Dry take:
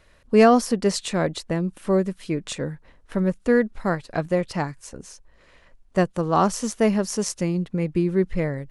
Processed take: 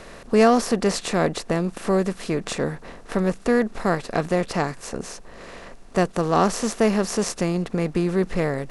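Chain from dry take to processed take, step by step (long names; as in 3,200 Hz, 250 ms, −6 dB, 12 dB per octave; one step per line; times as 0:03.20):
compressor on every frequency bin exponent 0.6
level −2.5 dB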